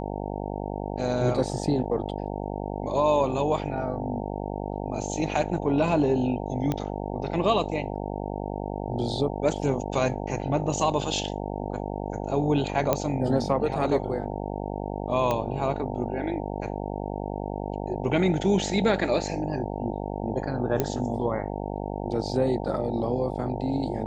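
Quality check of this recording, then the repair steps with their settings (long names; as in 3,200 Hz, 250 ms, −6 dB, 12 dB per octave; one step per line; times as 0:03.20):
mains buzz 50 Hz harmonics 18 −32 dBFS
0:06.72: click −14 dBFS
0:12.93: click −8 dBFS
0:15.31: click −13 dBFS
0:20.80: click −10 dBFS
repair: click removal
hum removal 50 Hz, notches 18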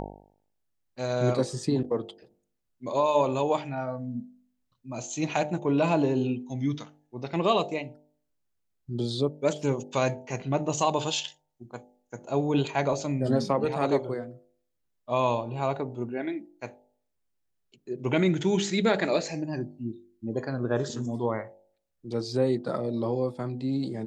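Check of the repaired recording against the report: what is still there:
0:20.80: click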